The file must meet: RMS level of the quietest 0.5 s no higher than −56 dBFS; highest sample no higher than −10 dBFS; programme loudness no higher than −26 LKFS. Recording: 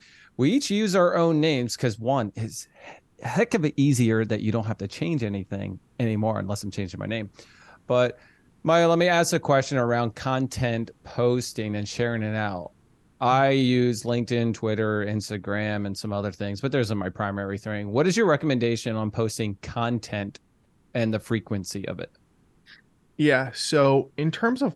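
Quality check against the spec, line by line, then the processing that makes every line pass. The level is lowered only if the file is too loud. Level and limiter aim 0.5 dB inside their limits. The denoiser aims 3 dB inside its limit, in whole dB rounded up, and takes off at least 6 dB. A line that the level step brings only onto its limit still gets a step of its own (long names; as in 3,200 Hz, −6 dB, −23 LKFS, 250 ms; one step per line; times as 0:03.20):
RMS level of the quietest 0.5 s −63 dBFS: in spec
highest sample −7.0 dBFS: out of spec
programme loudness −25.0 LKFS: out of spec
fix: level −1.5 dB
brickwall limiter −10.5 dBFS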